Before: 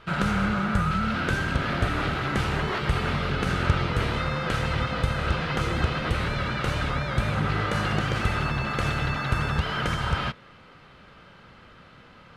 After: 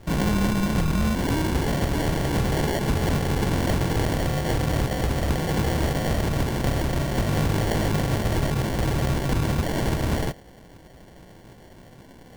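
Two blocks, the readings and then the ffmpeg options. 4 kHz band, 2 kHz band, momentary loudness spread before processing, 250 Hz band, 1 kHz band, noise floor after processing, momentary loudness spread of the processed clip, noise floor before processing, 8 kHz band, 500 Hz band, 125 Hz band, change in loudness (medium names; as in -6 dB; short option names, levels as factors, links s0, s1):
-0.5 dB, -4.0 dB, 2 LU, +4.5 dB, -1.5 dB, -48 dBFS, 2 LU, -51 dBFS, +9.5 dB, +4.5 dB, +3.0 dB, +2.0 dB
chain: -af "acrusher=samples=35:mix=1:aa=0.000001,aeval=exprs='0.112*(abs(mod(val(0)/0.112+3,4)-2)-1)':c=same,volume=1.5"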